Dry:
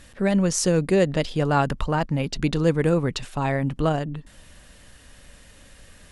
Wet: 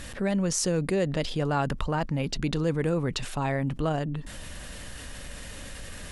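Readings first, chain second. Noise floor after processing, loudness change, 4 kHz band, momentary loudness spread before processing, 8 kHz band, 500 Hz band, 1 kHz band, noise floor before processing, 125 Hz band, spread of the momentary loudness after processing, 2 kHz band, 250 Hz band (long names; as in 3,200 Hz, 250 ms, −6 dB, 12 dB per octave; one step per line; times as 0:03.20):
−41 dBFS, −5.0 dB, −2.0 dB, 7 LU, −2.5 dB, −6.0 dB, −5.0 dB, −50 dBFS, −4.5 dB, 15 LU, −4.5 dB, −5.0 dB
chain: envelope flattener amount 50%
level −7.5 dB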